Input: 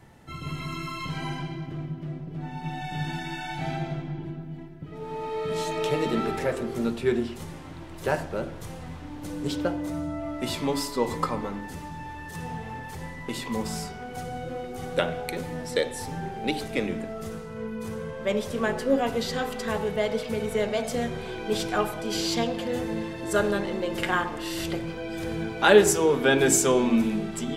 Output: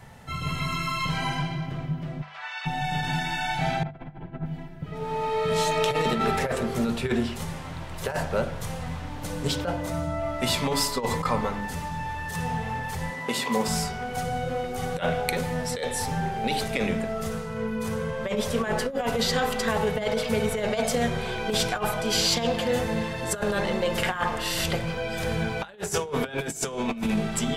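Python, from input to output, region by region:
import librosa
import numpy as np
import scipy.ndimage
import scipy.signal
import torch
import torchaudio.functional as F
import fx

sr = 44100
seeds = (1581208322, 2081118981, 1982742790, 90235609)

y = fx.spec_clip(x, sr, under_db=21, at=(2.21, 2.65), fade=0.02)
y = fx.highpass(y, sr, hz=1000.0, slope=24, at=(2.21, 2.65), fade=0.02)
y = fx.air_absorb(y, sr, metres=130.0, at=(2.21, 2.65), fade=0.02)
y = fx.chain(y, sr, fx.lowpass(hz=2000.0, slope=12),
    fx.over_compress(threshold_db=-39.0, ratio=-0.5), at=(3.83, 4.46))
y = fx.chain(y, sr, fx.highpass(hz=290.0, slope=12),
    fx.low_shelf(hz=500.0, db=6.0), at=(13.1, 13.68))
y = fx.peak_eq(y, sr, hz=320.0, db=-15.0, octaves=0.43)
y = fx.over_compress(y, sr, threshold_db=-29.0, ratio=-0.5)
y = fx.hum_notches(y, sr, base_hz=50, count=4)
y = y * librosa.db_to_amplitude(5.0)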